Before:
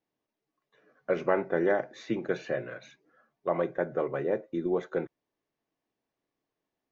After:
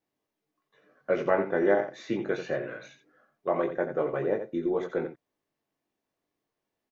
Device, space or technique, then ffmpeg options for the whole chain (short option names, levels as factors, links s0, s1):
slapback doubling: -filter_complex "[0:a]asplit=3[s0][s1][s2];[s1]adelay=20,volume=0.562[s3];[s2]adelay=87,volume=0.355[s4];[s0][s3][s4]amix=inputs=3:normalize=0"